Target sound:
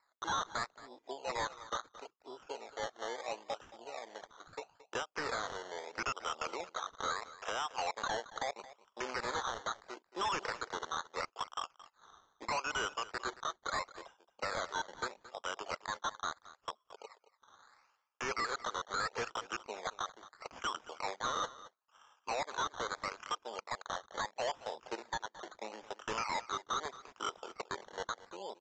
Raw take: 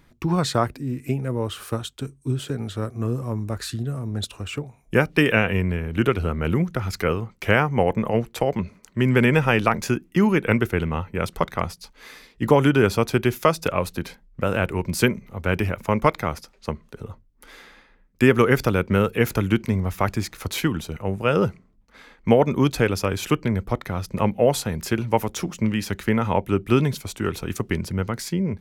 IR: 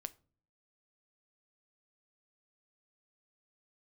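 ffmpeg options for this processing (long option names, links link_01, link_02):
-filter_complex "[0:a]aemphasis=mode=reproduction:type=50fm,afwtdn=0.0316,highpass=frequency=720:width=0.5412,highpass=frequency=720:width=1.3066,highshelf=frequency=1600:width_type=q:width=3:gain=-9,acompressor=threshold=-29dB:ratio=6,alimiter=limit=-22dB:level=0:latency=1:release=451,acrusher=samples=14:mix=1:aa=0.000001:lfo=1:lforange=8.4:lforate=0.76,asoftclip=type=hard:threshold=-36dB,asplit=2[link_01][link_02];[link_02]aecho=0:1:223:0.141[link_03];[link_01][link_03]amix=inputs=2:normalize=0,aresample=16000,aresample=44100,volume=4.5dB"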